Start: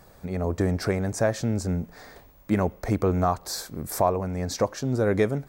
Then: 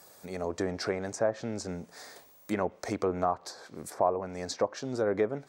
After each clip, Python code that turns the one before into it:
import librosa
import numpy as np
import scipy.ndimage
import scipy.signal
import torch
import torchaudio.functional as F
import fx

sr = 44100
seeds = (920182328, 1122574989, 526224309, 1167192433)

y = scipy.signal.sosfilt(scipy.signal.butter(2, 95.0, 'highpass', fs=sr, output='sos'), x)
y = fx.bass_treble(y, sr, bass_db=-11, treble_db=11)
y = fx.env_lowpass_down(y, sr, base_hz=1200.0, full_db=-20.0)
y = F.gain(torch.from_numpy(y), -3.0).numpy()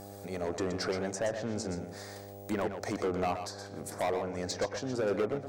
y = np.clip(10.0 ** (26.5 / 20.0) * x, -1.0, 1.0) / 10.0 ** (26.5 / 20.0)
y = fx.dmg_buzz(y, sr, base_hz=100.0, harmonics=8, level_db=-47.0, tilt_db=-1, odd_only=False)
y = y + 10.0 ** (-8.5 / 20.0) * np.pad(y, (int(122 * sr / 1000.0), 0))[:len(y)]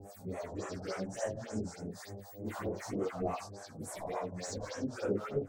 y = fx.phase_scramble(x, sr, seeds[0], window_ms=200)
y = fx.harmonic_tremolo(y, sr, hz=3.7, depth_pct=100, crossover_hz=620.0)
y = fx.phaser_stages(y, sr, stages=4, low_hz=350.0, high_hz=4500.0, hz=3.4, feedback_pct=20)
y = F.gain(torch.from_numpy(y), 2.5).numpy()